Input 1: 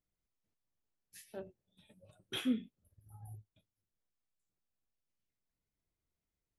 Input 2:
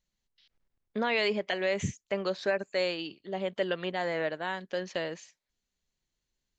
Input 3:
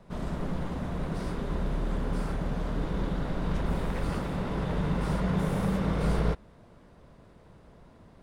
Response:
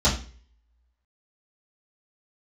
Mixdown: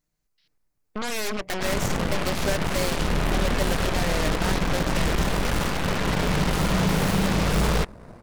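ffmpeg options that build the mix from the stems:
-filter_complex "[0:a]aecho=1:1:6.6:0.7,volume=1dB[a];[1:a]volume=-6dB,asplit=2[b][c];[2:a]adelay=1500,volume=-2dB[d];[c]apad=whole_len=290561[e];[a][e]sidechaincompress=threshold=-43dB:ratio=8:attack=12:release=327[f];[f][b][d]amix=inputs=3:normalize=0,equalizer=f=3.3k:t=o:w=0.52:g=-7.5,dynaudnorm=f=370:g=7:m=6dB,aeval=exprs='0.0794*(cos(1*acos(clip(val(0)/0.0794,-1,1)))-cos(1*PI/2))+0.0282*(cos(3*acos(clip(val(0)/0.0794,-1,1)))-cos(3*PI/2))+0.0316*(cos(5*acos(clip(val(0)/0.0794,-1,1)))-cos(5*PI/2))+0.0316*(cos(8*acos(clip(val(0)/0.0794,-1,1)))-cos(8*PI/2))':c=same"

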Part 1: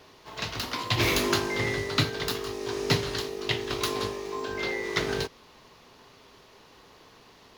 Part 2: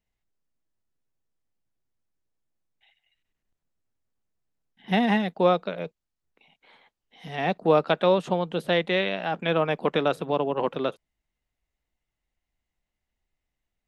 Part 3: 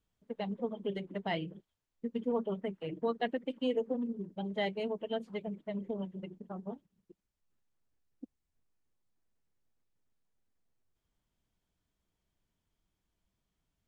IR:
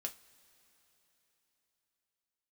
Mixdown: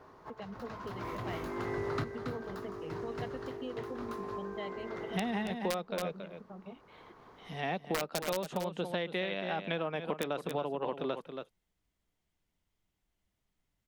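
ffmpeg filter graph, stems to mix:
-filter_complex "[0:a]highshelf=f=2k:t=q:w=1.5:g=-13.5,asoftclip=type=tanh:threshold=-23.5dB,volume=-2dB,asplit=2[a][b];[b]volume=-9dB[c];[1:a]aeval=exprs='(mod(3.35*val(0)+1,2)-1)/3.35':c=same,adelay=250,volume=-4dB,asplit=2[d][e];[e]volume=-11dB[f];[2:a]acompressor=threshold=-53dB:ratio=1.5,volume=-1dB,asplit=2[g][h];[h]apad=whole_len=334199[i];[a][i]sidechaincompress=threshold=-54dB:ratio=8:attack=7.5:release=408[j];[c][f]amix=inputs=2:normalize=0,aecho=0:1:277:1[k];[j][d][g][k]amix=inputs=4:normalize=0,acompressor=threshold=-30dB:ratio=12"

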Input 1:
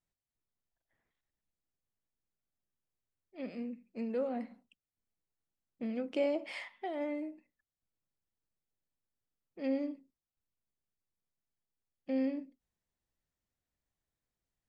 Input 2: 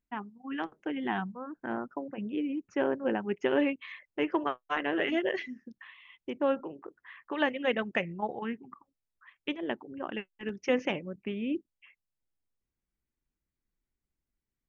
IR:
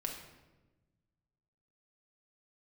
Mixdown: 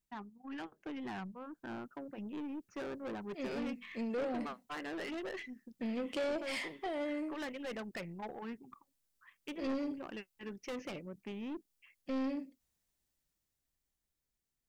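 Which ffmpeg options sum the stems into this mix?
-filter_complex "[0:a]highshelf=f=3.4k:g=11,dynaudnorm=f=320:g=11:m=8.5dB,volume=-6.5dB[a];[1:a]aeval=exprs='(tanh(39.8*val(0)+0.25)-tanh(0.25))/39.8':c=same,volume=-5dB[b];[a][b]amix=inputs=2:normalize=0,asoftclip=type=tanh:threshold=-32dB"

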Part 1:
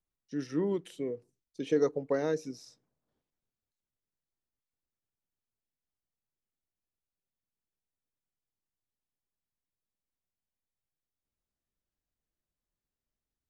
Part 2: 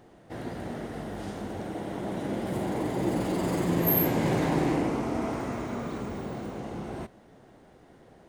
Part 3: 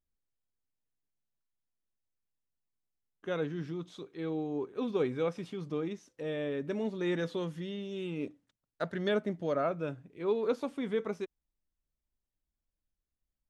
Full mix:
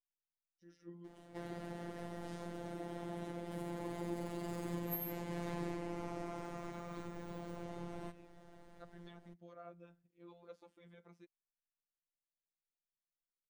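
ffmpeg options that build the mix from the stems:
-filter_complex "[0:a]adelay=300,volume=-19.5dB[a];[1:a]asubboost=boost=4.5:cutoff=81,adelay=1050,volume=-1.5dB[b];[2:a]volume=-19dB,asplit=2[c][d];[d]apad=whole_len=411608[e];[b][e]sidechaincompress=threshold=-51dB:ratio=8:attack=36:release=454[f];[a][f][c]amix=inputs=3:normalize=0,afftfilt=real='hypot(re,im)*cos(PI*b)':imag='0':win_size=1024:overlap=0.75,acompressor=threshold=-43dB:ratio=2"

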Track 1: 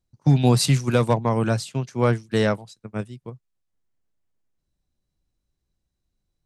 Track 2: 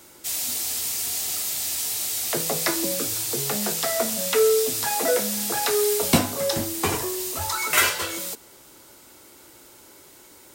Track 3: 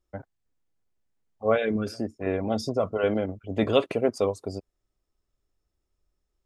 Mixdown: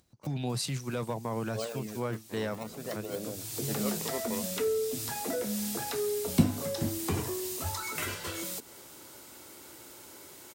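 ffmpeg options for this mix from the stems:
-filter_complex "[0:a]volume=-8.5dB,asplit=2[a][b];[1:a]lowshelf=f=160:g=7,acrossover=split=300[c][d];[d]acompressor=threshold=-34dB:ratio=6[e];[c][e]amix=inputs=2:normalize=0,adelay=250,volume=-0.5dB[f];[2:a]acrusher=samples=21:mix=1:aa=0.000001:lfo=1:lforange=21:lforate=0.55,deesser=1,adelay=100,volume=-11.5dB[g];[b]apad=whole_len=475841[h];[f][h]sidechaincompress=threshold=-46dB:ratio=8:attack=22:release=498[i];[a][g]amix=inputs=2:normalize=0,acompressor=mode=upward:threshold=-47dB:ratio=2.5,alimiter=limit=-23dB:level=0:latency=1:release=14,volume=0dB[j];[i][j]amix=inputs=2:normalize=0,highpass=61,lowshelf=f=160:g=-6"

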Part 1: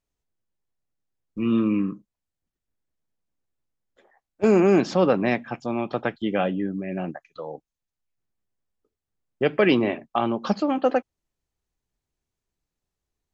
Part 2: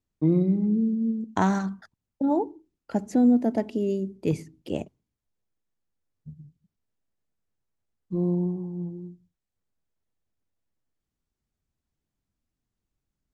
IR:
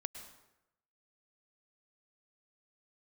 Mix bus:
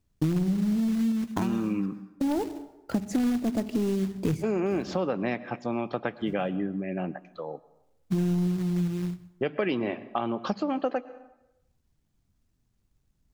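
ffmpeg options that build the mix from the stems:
-filter_complex "[0:a]volume=-4dB,asplit=3[a][b][c];[b]volume=-8dB[d];[1:a]acrusher=bits=3:mode=log:mix=0:aa=0.000001,aeval=exprs='0.266*(cos(1*acos(clip(val(0)/0.266,-1,1)))-cos(1*PI/2))+0.0266*(cos(5*acos(clip(val(0)/0.266,-1,1)))-cos(5*PI/2))':c=same,bass=f=250:g=8,treble=f=4k:g=4,volume=-0.5dB,asplit=2[e][f];[f]volume=-9.5dB[g];[c]apad=whole_len=588120[h];[e][h]sidechaincompress=threshold=-44dB:ratio=8:attack=16:release=447[i];[2:a]atrim=start_sample=2205[j];[d][g]amix=inputs=2:normalize=0[k];[k][j]afir=irnorm=-1:irlink=0[l];[a][i][l]amix=inputs=3:normalize=0,highshelf=f=6.1k:g=-4.5,acompressor=threshold=-24dB:ratio=6"

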